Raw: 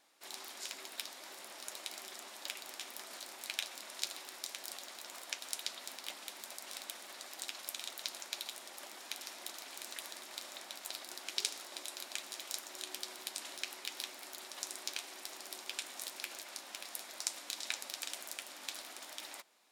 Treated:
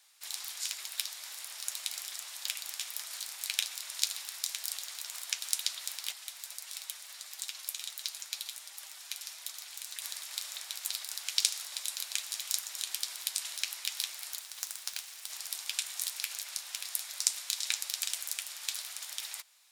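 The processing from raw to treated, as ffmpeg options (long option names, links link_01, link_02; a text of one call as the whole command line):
ffmpeg -i in.wav -filter_complex "[0:a]asettb=1/sr,asplit=3[link_01][link_02][link_03];[link_01]atrim=end=6.124[link_04];[link_02]atrim=start=6.12:end=10.02,asetpts=PTS-STARTPTS,afade=type=in:duration=0.004:curve=qsin,afade=type=out:start_time=3.896:duration=0.004:curve=qsin,flanger=delay=6.1:depth=1:regen=55:speed=1.5:shape=sinusoidal[link_05];[link_03]atrim=start=10.016[link_06];[link_04][link_05]acrossfade=duration=0.004:curve1=hsin:curve2=qsin[link_07];[link_07][link_06]acrossfade=duration=0.004:curve1=qsin:curve2=hsin,asettb=1/sr,asplit=3[link_08][link_09][link_10];[link_08]atrim=end=14.394[link_11];[link_09]atrim=start=14.39:end=15.3,asetpts=PTS-STARTPTS,afade=type=in:duration=0.004:curve=qsin,afade=type=out:start_time=0.906:duration=0.004:curve=qsin,aeval=exprs='max(val(0),0)':channel_layout=same[link_12];[link_10]atrim=start=15.296[link_13];[link_11][link_12]acrossfade=duration=0.004:curve1=hsin:curve2=qsin[link_14];[link_14][link_13]acrossfade=duration=0.004:curve1=qsin:curve2=hsin,highpass=1000,highshelf=frequency=2600:gain=11.5,volume=-1dB" out.wav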